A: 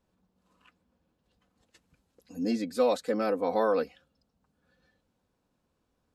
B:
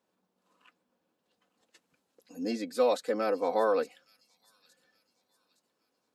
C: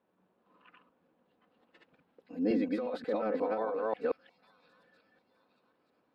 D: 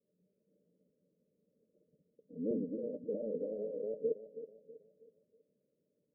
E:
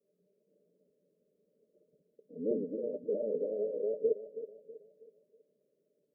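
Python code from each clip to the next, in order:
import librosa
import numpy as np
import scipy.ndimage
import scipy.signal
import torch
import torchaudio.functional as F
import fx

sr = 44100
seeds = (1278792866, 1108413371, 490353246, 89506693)

y1 = scipy.signal.sosfilt(scipy.signal.butter(2, 290.0, 'highpass', fs=sr, output='sos'), x)
y1 = fx.echo_wet_highpass(y1, sr, ms=865, feedback_pct=38, hz=5400.0, wet_db=-11)
y2 = fx.reverse_delay(y1, sr, ms=179, wet_db=0)
y2 = fx.over_compress(y2, sr, threshold_db=-30.0, ratio=-1.0)
y2 = fx.air_absorb(y2, sr, metres=440.0)
y3 = fx.vibrato(y2, sr, rate_hz=4.1, depth_cents=82.0)
y3 = scipy.signal.sosfilt(scipy.signal.cheby1(6, 9, 620.0, 'lowpass', fs=sr, output='sos'), y3)
y3 = fx.echo_feedback(y3, sr, ms=323, feedback_pct=40, wet_db=-12.5)
y4 = fx.graphic_eq_31(y3, sr, hz=(100, 400, 630), db=(-12, 11, 10))
y4 = y4 * librosa.db_to_amplitude(-2.0)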